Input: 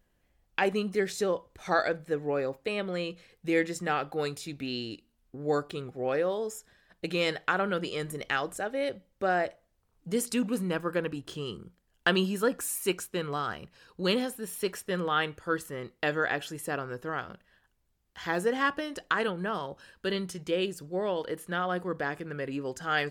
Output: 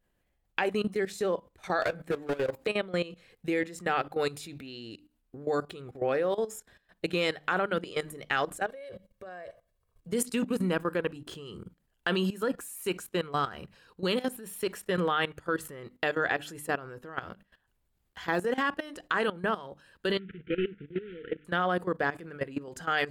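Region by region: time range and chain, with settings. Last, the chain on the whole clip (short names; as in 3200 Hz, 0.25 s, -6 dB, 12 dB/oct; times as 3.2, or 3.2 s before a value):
1.82–2.67 hard clip -30.5 dBFS + doubler 17 ms -9 dB + three-band squash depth 100%
8.66–10.09 comb 1.8 ms + compressor 12:1, threshold -31 dBFS
20.19–21.45 CVSD 16 kbps + brick-wall FIR band-stop 500–1300 Hz + air absorption 100 m
whole clip: bell 5700 Hz -4.5 dB 0.55 oct; notches 50/100/150/200/250/300 Hz; level quantiser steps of 16 dB; gain +5 dB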